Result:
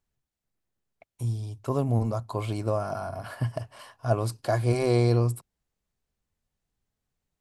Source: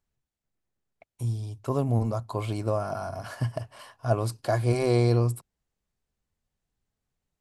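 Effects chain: 2.99–3.45 bell 6200 Hz -7 dB -> -13.5 dB 0.49 oct

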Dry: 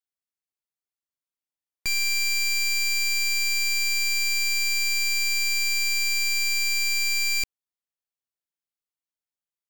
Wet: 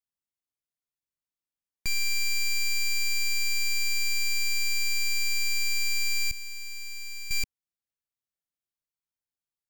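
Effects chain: 6.31–7.31 expander -18 dBFS; tone controls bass +8 dB, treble +1 dB; gain -5 dB

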